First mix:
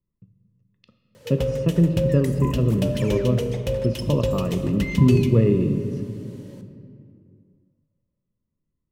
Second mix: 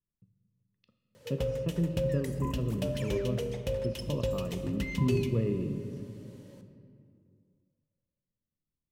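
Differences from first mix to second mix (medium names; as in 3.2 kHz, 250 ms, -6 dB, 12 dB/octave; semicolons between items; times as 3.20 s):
speech -12.0 dB; background -7.0 dB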